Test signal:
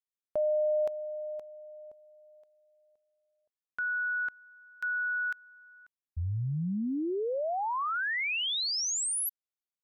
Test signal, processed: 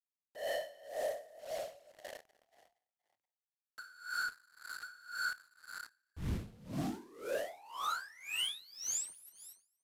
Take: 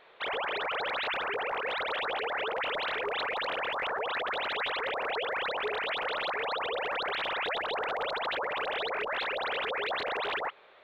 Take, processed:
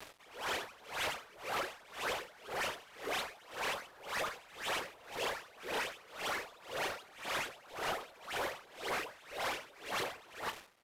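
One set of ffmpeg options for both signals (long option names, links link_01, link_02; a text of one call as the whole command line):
ffmpeg -i in.wav -filter_complex "[0:a]highpass=99,equalizer=frequency=4100:width_type=o:width=0.28:gain=-6,asplit=2[link_01][link_02];[link_02]acompressor=threshold=-46dB:ratio=6:release=51:detection=rms,volume=-3dB[link_03];[link_01][link_03]amix=inputs=2:normalize=0,asoftclip=type=hard:threshold=-35.5dB,afftfilt=real='hypot(re,im)*cos(2*PI*random(0))':imag='hypot(re,im)*sin(2*PI*random(1))':win_size=512:overlap=0.75,acrusher=bits=8:mix=0:aa=0.000001,asoftclip=type=tanh:threshold=-38.5dB,aresample=32000,aresample=44100,asplit=2[link_04][link_05];[link_05]adelay=27,volume=-13.5dB[link_06];[link_04][link_06]amix=inputs=2:normalize=0,asplit=2[link_07][link_08];[link_08]asplit=4[link_09][link_10][link_11][link_12];[link_09]adelay=236,afreqshift=34,volume=-18.5dB[link_13];[link_10]adelay=472,afreqshift=68,volume=-24.5dB[link_14];[link_11]adelay=708,afreqshift=102,volume=-30.5dB[link_15];[link_12]adelay=944,afreqshift=136,volume=-36.6dB[link_16];[link_13][link_14][link_15][link_16]amix=inputs=4:normalize=0[link_17];[link_07][link_17]amix=inputs=2:normalize=0,aeval=exprs='val(0)*pow(10,-24*(0.5-0.5*cos(2*PI*1.9*n/s))/20)':channel_layout=same,volume=10dB" out.wav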